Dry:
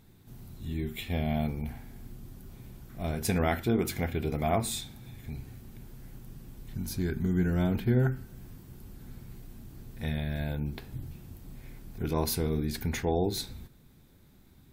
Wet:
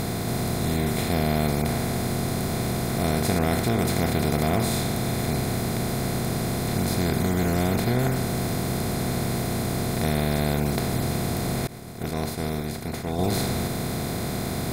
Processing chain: spectral levelling over time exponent 0.2; 11.67–13.19 s: expander -14 dBFS; bass shelf 180 Hz +3 dB; trim -3.5 dB

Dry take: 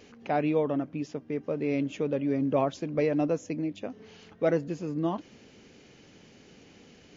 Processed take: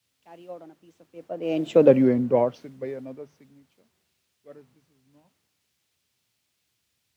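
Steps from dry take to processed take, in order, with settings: Doppler pass-by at 1.87 s, 44 m/s, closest 6.7 m; added noise pink -65 dBFS; high-pass 85 Hz 24 dB/octave; treble shelf 4.2 kHz -6.5 dB; hum notches 50/100/150 Hz; dynamic bell 600 Hz, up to +6 dB, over -49 dBFS, Q 1.1; three bands expanded up and down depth 70%; trim +4.5 dB

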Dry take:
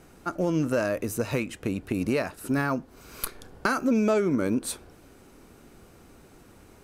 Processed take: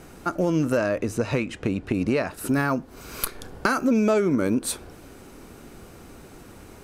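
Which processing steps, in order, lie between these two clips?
in parallel at +2.5 dB: compression, threshold -33 dBFS, peak gain reduction 12.5 dB; 0.77–2.31 s: on the sum: distance through air 67 m

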